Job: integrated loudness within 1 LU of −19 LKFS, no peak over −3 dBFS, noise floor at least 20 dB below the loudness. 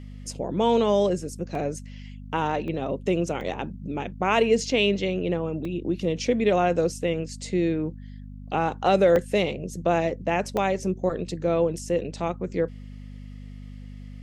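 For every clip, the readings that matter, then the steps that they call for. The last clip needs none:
number of dropouts 6; longest dropout 1.8 ms; mains hum 50 Hz; hum harmonics up to 250 Hz; level of the hum −38 dBFS; integrated loudness −25.5 LKFS; sample peak −7.5 dBFS; target loudness −19.0 LKFS
→ repair the gap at 0:01.55/0:02.68/0:03.41/0:05.65/0:09.16/0:10.57, 1.8 ms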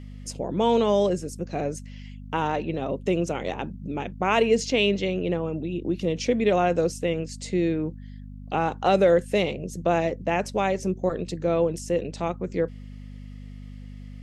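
number of dropouts 0; mains hum 50 Hz; hum harmonics up to 250 Hz; level of the hum −38 dBFS
→ hum removal 50 Hz, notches 5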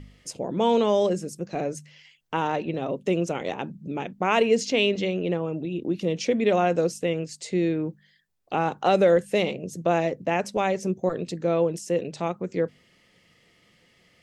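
mains hum none found; integrated loudness −25.5 LKFS; sample peak −8.0 dBFS; target loudness −19.0 LKFS
→ level +6.5 dB
brickwall limiter −3 dBFS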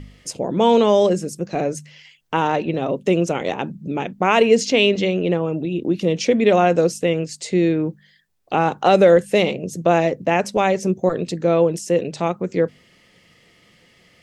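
integrated loudness −19.0 LKFS; sample peak −3.0 dBFS; background noise floor −55 dBFS

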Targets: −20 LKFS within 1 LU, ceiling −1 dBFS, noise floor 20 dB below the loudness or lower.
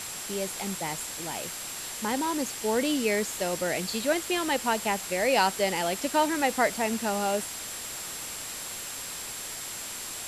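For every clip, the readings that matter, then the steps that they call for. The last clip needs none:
interfering tone 7,600 Hz; level of the tone −41 dBFS; background noise floor −38 dBFS; target noise floor −49 dBFS; integrated loudness −28.5 LKFS; sample peak −9.5 dBFS; target loudness −20.0 LKFS
→ notch filter 7,600 Hz, Q 30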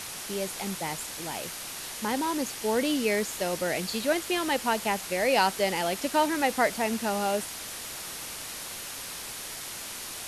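interfering tone none found; background noise floor −39 dBFS; target noise floor −49 dBFS
→ broadband denoise 10 dB, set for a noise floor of −39 dBFS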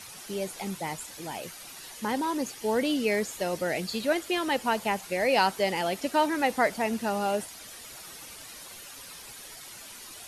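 background noise floor −45 dBFS; target noise floor −49 dBFS
→ broadband denoise 6 dB, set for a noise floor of −45 dBFS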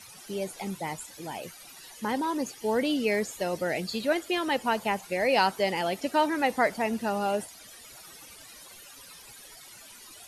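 background noise floor −49 dBFS; integrated loudness −28.5 LKFS; sample peak −10.5 dBFS; target loudness −20.0 LKFS
→ level +8.5 dB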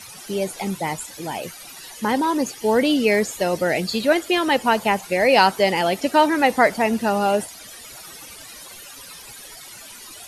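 integrated loudness −20.0 LKFS; sample peak −2.0 dBFS; background noise floor −41 dBFS

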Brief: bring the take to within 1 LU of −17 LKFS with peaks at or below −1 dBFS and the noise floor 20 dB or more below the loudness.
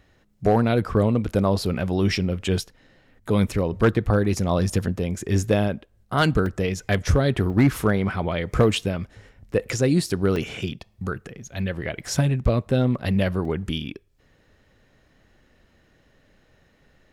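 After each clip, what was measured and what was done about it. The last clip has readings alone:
share of clipped samples 0.2%; peaks flattened at −10.5 dBFS; number of dropouts 4; longest dropout 2.7 ms; integrated loudness −23.5 LKFS; sample peak −10.5 dBFS; target loudness −17.0 LKFS
→ clipped peaks rebuilt −10.5 dBFS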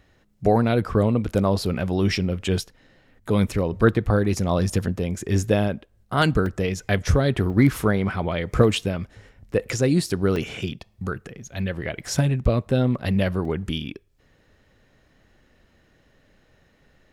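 share of clipped samples 0.0%; number of dropouts 4; longest dropout 2.7 ms
→ repair the gap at 0:06.46/0:07.50/0:10.36/0:13.45, 2.7 ms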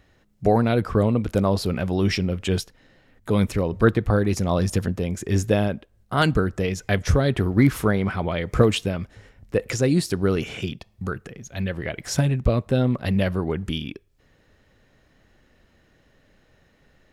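number of dropouts 0; integrated loudness −23.0 LKFS; sample peak −4.0 dBFS; target loudness −17.0 LKFS
→ level +6 dB
brickwall limiter −1 dBFS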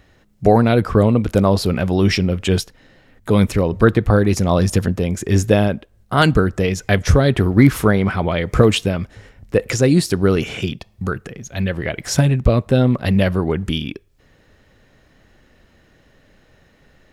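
integrated loudness −17.0 LKFS; sample peak −1.0 dBFS; background noise floor −55 dBFS

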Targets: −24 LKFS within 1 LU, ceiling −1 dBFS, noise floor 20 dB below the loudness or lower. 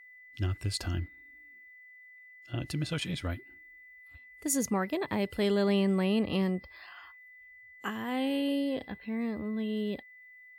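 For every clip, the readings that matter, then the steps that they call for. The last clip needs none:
interfering tone 2,000 Hz; level of the tone −51 dBFS; integrated loudness −32.0 LKFS; sample peak −16.0 dBFS; target loudness −24.0 LKFS
→ notch filter 2,000 Hz, Q 30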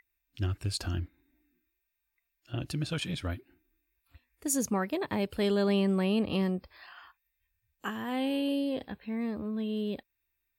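interfering tone none found; integrated loudness −32.0 LKFS; sample peak −16.0 dBFS; target loudness −24.0 LKFS
→ level +8 dB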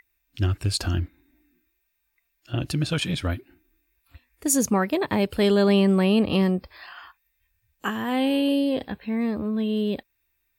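integrated loudness −24.0 LKFS; sample peak −8.0 dBFS; background noise floor −74 dBFS

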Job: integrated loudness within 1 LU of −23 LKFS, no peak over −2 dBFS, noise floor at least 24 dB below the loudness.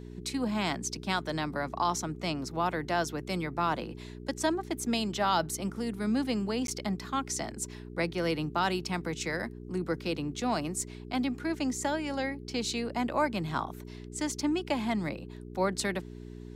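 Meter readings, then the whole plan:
number of dropouts 1; longest dropout 12 ms; mains hum 60 Hz; hum harmonics up to 420 Hz; level of the hum −42 dBFS; integrated loudness −32.0 LKFS; sample peak −15.5 dBFS; target loudness −23.0 LKFS
→ repair the gap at 0:06.67, 12 ms
hum removal 60 Hz, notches 7
level +9 dB

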